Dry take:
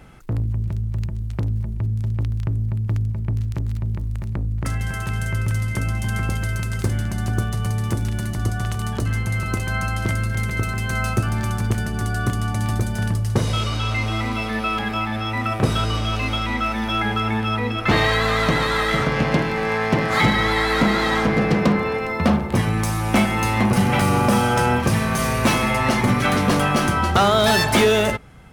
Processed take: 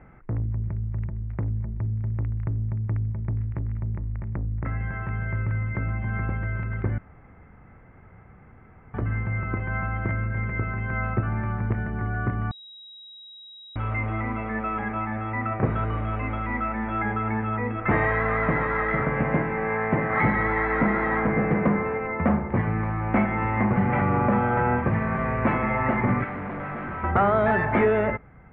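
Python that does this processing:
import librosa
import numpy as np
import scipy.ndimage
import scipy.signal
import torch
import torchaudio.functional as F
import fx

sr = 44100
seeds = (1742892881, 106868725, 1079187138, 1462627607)

y = fx.overload_stage(x, sr, gain_db=26.5, at=(26.24, 27.04))
y = fx.edit(y, sr, fx.room_tone_fill(start_s=6.98, length_s=1.96),
    fx.bleep(start_s=12.51, length_s=1.25, hz=3830.0, db=-6.5), tone=tone)
y = scipy.signal.sosfilt(scipy.signal.ellip(4, 1.0, 80, 2100.0, 'lowpass', fs=sr, output='sos'), y)
y = F.gain(torch.from_numpy(y), -3.5).numpy()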